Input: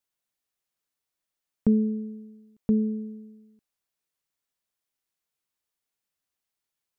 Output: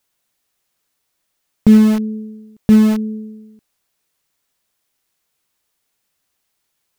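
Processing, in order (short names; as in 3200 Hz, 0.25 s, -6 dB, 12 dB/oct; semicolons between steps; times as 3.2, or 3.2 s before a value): dynamic EQ 560 Hz, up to -8 dB, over -40 dBFS, Q 0.79; in parallel at -10 dB: bit-crush 5-bit; on the sum: maximiser +15.5 dB; gain -1 dB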